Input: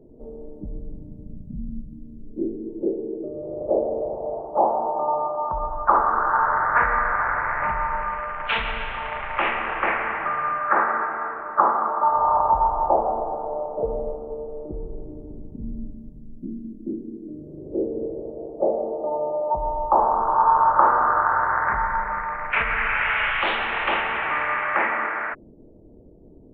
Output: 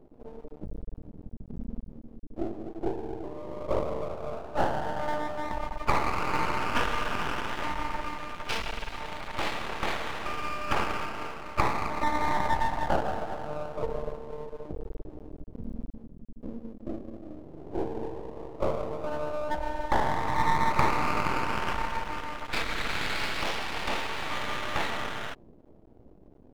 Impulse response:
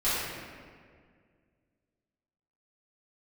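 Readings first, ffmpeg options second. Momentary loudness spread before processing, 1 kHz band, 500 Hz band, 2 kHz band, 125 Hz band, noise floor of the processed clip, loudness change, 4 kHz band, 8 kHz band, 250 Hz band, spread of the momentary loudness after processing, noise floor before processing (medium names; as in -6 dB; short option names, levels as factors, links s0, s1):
18 LU, -10.0 dB, -7.5 dB, -9.0 dB, +2.0 dB, -53 dBFS, -9.0 dB, 0.0 dB, no reading, -3.5 dB, 16 LU, -46 dBFS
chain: -af "aeval=exprs='max(val(0),0)':c=same,equalizer=f=1600:t=o:w=1.5:g=-5,volume=0.841"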